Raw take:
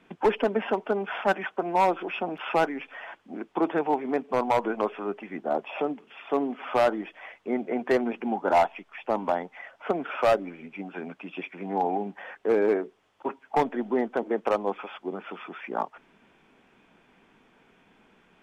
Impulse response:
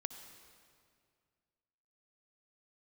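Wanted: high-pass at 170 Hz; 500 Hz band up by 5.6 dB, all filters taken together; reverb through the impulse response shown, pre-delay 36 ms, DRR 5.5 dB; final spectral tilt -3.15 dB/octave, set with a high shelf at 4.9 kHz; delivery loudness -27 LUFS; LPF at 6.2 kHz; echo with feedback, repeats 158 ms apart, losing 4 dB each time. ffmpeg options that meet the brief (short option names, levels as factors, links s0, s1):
-filter_complex "[0:a]highpass=170,lowpass=6200,equalizer=f=500:t=o:g=7,highshelf=f=4900:g=8,aecho=1:1:158|316|474|632|790|948|1106|1264|1422:0.631|0.398|0.25|0.158|0.0994|0.0626|0.0394|0.0249|0.0157,asplit=2[s0][s1];[1:a]atrim=start_sample=2205,adelay=36[s2];[s1][s2]afir=irnorm=-1:irlink=0,volume=0.668[s3];[s0][s3]amix=inputs=2:normalize=0,volume=0.501"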